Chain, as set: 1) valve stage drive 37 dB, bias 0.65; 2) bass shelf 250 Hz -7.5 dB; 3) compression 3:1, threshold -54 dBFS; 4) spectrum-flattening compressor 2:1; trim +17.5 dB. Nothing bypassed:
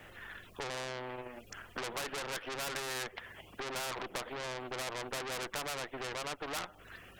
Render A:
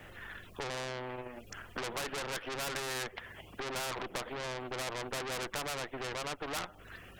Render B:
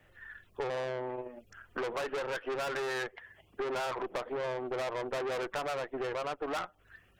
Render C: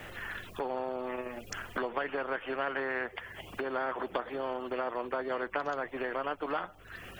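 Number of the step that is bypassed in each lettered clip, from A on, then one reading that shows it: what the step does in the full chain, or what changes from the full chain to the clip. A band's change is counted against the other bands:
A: 2, 125 Hz band +3.0 dB; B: 4, 8 kHz band -11.0 dB; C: 1, 4 kHz band -12.5 dB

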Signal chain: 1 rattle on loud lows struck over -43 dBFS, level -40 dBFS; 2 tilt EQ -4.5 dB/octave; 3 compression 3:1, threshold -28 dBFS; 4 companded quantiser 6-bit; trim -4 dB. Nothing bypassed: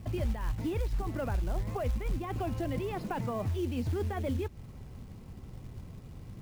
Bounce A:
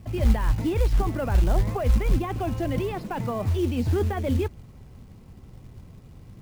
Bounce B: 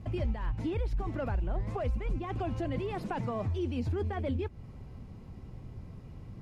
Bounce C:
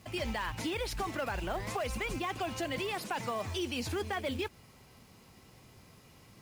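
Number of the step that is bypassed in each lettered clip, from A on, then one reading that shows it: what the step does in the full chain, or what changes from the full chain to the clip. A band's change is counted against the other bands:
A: 3, mean gain reduction 5.5 dB; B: 4, distortion -25 dB; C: 2, 125 Hz band -15.0 dB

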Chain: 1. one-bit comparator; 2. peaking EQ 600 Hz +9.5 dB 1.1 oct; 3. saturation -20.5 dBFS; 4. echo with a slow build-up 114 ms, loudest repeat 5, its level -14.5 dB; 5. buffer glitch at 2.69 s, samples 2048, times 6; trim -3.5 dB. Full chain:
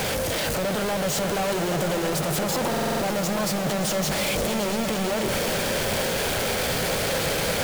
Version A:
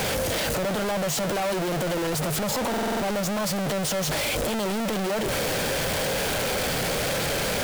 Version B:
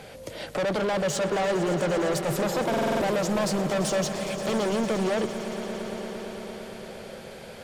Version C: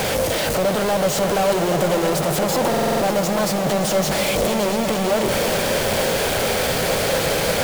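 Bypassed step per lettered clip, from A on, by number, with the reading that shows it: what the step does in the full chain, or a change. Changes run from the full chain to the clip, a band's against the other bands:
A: 4, crest factor change -7.5 dB; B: 1, crest factor change +2.0 dB; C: 3, distortion -11 dB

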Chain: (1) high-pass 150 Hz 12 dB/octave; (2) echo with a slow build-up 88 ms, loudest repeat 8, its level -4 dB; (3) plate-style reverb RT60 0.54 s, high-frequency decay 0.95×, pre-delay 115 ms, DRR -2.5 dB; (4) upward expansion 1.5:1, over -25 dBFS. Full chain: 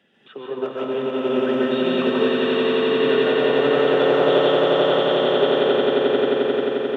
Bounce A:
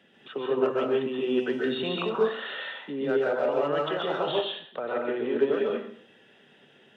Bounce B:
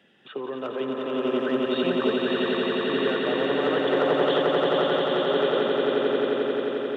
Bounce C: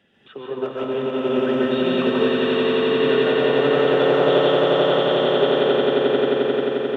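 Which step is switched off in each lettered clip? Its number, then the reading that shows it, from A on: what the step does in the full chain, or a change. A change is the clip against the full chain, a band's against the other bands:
2, momentary loudness spread change +1 LU; 3, loudness change -5.0 LU; 1, 125 Hz band +3.5 dB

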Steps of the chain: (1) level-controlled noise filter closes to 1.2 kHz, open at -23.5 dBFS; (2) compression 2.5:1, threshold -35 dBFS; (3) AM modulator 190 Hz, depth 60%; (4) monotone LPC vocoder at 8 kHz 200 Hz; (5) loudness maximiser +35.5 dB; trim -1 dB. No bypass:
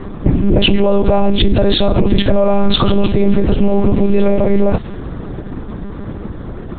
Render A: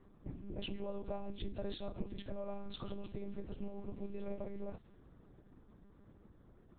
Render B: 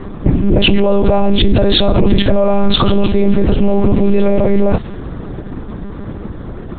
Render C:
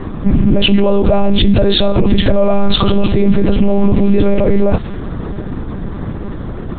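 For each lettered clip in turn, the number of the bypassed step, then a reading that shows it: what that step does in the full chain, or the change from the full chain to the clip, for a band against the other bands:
5, crest factor change +7.0 dB; 2, mean gain reduction 4.0 dB; 3, momentary loudness spread change -2 LU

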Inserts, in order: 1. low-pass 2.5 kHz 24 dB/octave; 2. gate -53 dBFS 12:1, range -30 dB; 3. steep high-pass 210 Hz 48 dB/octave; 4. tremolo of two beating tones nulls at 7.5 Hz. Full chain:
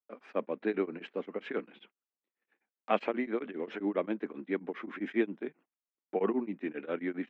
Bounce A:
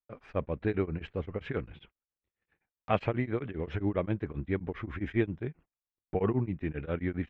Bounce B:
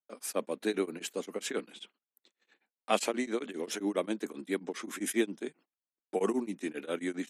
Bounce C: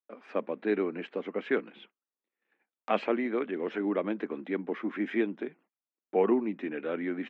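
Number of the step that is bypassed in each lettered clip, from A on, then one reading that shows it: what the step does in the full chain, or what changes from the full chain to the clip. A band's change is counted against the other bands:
3, 125 Hz band +18.5 dB; 1, 4 kHz band +10.5 dB; 4, crest factor change -3.0 dB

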